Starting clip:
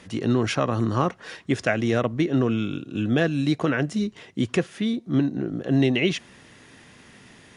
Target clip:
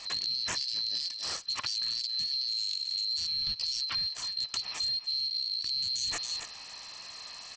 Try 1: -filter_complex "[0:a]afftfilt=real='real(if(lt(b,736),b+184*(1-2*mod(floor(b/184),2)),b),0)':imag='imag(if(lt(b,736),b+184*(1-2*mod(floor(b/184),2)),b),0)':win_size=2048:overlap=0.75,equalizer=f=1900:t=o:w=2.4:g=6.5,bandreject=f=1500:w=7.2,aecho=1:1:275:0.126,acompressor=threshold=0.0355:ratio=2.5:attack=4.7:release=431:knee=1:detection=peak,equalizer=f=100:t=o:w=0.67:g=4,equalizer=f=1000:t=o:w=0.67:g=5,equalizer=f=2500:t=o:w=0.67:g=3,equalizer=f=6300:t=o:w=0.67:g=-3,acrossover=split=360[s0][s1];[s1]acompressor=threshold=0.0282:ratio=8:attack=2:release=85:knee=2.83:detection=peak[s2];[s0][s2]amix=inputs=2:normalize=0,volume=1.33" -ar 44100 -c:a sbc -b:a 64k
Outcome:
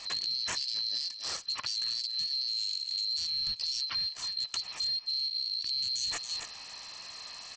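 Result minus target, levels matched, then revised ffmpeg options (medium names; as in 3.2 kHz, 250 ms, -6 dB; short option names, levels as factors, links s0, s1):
compression: peak gain reduction +4 dB
-filter_complex "[0:a]afftfilt=real='real(if(lt(b,736),b+184*(1-2*mod(floor(b/184),2)),b),0)':imag='imag(if(lt(b,736),b+184*(1-2*mod(floor(b/184),2)),b),0)':win_size=2048:overlap=0.75,equalizer=f=1900:t=o:w=2.4:g=6.5,bandreject=f=1500:w=7.2,aecho=1:1:275:0.126,acompressor=threshold=0.075:ratio=2.5:attack=4.7:release=431:knee=1:detection=peak,equalizer=f=100:t=o:w=0.67:g=4,equalizer=f=1000:t=o:w=0.67:g=5,equalizer=f=2500:t=o:w=0.67:g=3,equalizer=f=6300:t=o:w=0.67:g=-3,acrossover=split=360[s0][s1];[s1]acompressor=threshold=0.0282:ratio=8:attack=2:release=85:knee=2.83:detection=peak[s2];[s0][s2]amix=inputs=2:normalize=0,volume=1.33" -ar 44100 -c:a sbc -b:a 64k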